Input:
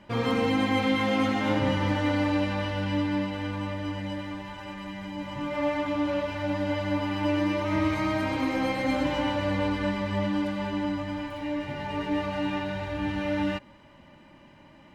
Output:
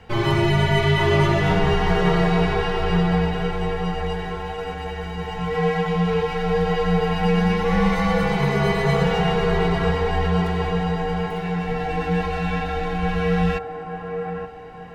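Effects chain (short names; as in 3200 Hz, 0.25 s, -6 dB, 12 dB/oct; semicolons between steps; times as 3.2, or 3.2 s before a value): band-limited delay 0.876 s, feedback 41%, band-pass 750 Hz, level -3.5 dB; frequency shift -120 Hz; gain +6.5 dB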